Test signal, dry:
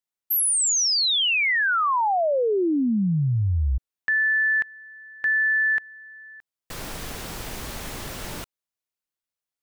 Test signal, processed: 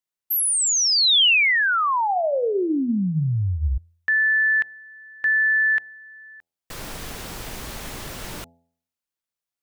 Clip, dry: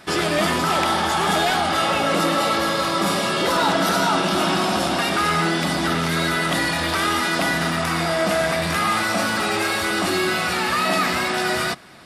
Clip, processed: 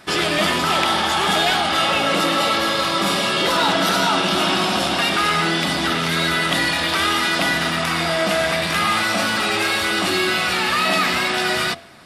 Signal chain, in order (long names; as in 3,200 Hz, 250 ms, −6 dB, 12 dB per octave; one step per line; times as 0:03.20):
dynamic equaliser 3,100 Hz, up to +6 dB, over −39 dBFS, Q 1.1
hum removal 84.41 Hz, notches 10